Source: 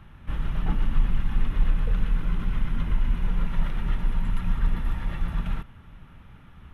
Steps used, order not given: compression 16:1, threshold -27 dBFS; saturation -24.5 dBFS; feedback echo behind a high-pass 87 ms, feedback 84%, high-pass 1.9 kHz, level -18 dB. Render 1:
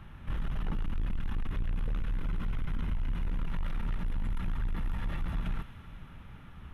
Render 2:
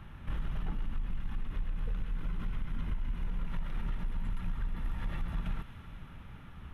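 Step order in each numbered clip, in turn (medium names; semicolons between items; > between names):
feedback echo behind a high-pass > saturation > compression; feedback echo behind a high-pass > compression > saturation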